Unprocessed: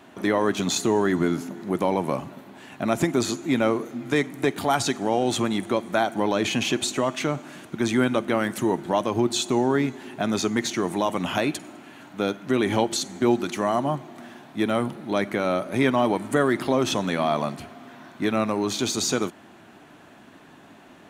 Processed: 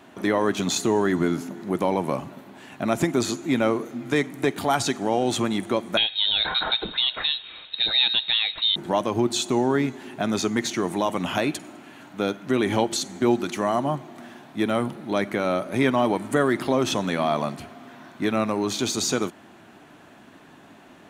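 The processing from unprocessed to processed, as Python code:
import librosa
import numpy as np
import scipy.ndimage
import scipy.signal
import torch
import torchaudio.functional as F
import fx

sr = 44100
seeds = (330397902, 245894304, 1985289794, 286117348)

y = fx.freq_invert(x, sr, carrier_hz=4000, at=(5.97, 8.76))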